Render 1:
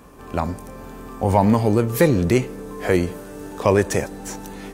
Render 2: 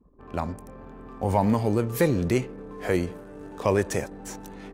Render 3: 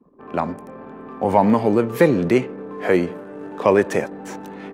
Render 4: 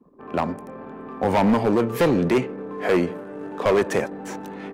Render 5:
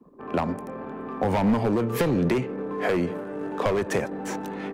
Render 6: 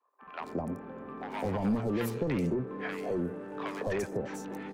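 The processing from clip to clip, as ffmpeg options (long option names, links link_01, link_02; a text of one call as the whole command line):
ffmpeg -i in.wav -af "anlmdn=0.631,volume=-6dB" out.wav
ffmpeg -i in.wav -filter_complex "[0:a]acrossover=split=150 3400:gain=0.0708 1 0.251[link_01][link_02][link_03];[link_01][link_02][link_03]amix=inputs=3:normalize=0,volume=8dB" out.wav
ffmpeg -i in.wav -af "asoftclip=type=hard:threshold=-14dB" out.wav
ffmpeg -i in.wav -filter_complex "[0:a]acrossover=split=160[link_01][link_02];[link_02]acompressor=threshold=-23dB:ratio=10[link_03];[link_01][link_03]amix=inputs=2:normalize=0,volume=2dB" out.wav
ffmpeg -i in.wav -filter_complex "[0:a]acrossover=split=800|4400[link_01][link_02][link_03];[link_03]adelay=90[link_04];[link_01]adelay=210[link_05];[link_05][link_02][link_04]amix=inputs=3:normalize=0,volume=-7dB" out.wav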